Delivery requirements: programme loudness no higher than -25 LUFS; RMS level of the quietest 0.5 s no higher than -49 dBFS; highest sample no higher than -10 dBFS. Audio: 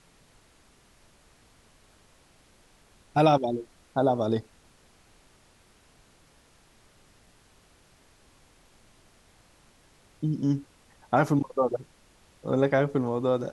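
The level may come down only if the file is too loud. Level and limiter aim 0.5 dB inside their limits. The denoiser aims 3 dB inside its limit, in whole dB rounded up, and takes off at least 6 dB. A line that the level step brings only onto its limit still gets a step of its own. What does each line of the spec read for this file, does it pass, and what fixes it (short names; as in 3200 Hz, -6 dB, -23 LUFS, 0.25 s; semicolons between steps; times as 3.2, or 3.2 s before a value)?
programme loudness -26.5 LUFS: OK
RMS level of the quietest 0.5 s -60 dBFS: OK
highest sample -8.0 dBFS: fail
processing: limiter -10.5 dBFS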